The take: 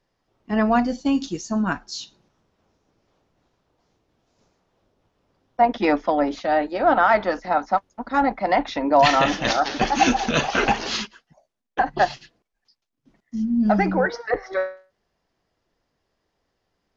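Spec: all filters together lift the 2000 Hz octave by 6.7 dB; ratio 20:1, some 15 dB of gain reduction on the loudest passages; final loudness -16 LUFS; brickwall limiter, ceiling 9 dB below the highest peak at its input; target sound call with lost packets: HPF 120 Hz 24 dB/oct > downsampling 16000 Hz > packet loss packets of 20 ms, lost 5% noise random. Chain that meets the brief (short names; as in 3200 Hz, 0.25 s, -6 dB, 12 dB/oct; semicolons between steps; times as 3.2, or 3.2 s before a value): bell 2000 Hz +8.5 dB; compressor 20:1, threshold -24 dBFS; limiter -20.5 dBFS; HPF 120 Hz 24 dB/oct; downsampling 16000 Hz; packet loss packets of 20 ms, lost 5% noise random; gain +15 dB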